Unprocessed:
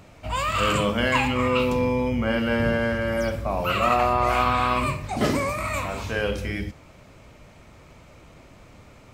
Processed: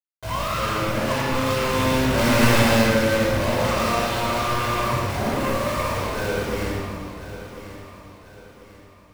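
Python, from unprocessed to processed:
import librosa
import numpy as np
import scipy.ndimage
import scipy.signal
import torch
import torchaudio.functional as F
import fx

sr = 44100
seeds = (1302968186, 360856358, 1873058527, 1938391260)

p1 = fx.doppler_pass(x, sr, speed_mps=13, closest_m=2.6, pass_at_s=2.44)
p2 = scipy.signal.sosfilt(scipy.signal.butter(2, 1400.0, 'lowpass', fs=sr, output='sos'), p1)
p3 = fx.low_shelf(p2, sr, hz=150.0, db=-9.5)
p4 = fx.rider(p3, sr, range_db=3, speed_s=0.5)
p5 = p3 + (p4 * librosa.db_to_amplitude(-1.5))
p6 = fx.fold_sine(p5, sr, drive_db=11, ceiling_db=-11.5)
p7 = fx.quant_companded(p6, sr, bits=2)
p8 = np.clip(p7, -10.0 ** (-13.5 / 20.0), 10.0 ** (-13.5 / 20.0))
p9 = p8 + fx.echo_feedback(p8, sr, ms=1042, feedback_pct=39, wet_db=-13.0, dry=0)
p10 = fx.room_shoebox(p9, sr, seeds[0], volume_m3=2100.0, walls='mixed', distance_m=5.1)
y = p10 * librosa.db_to_amplitude(-7.0)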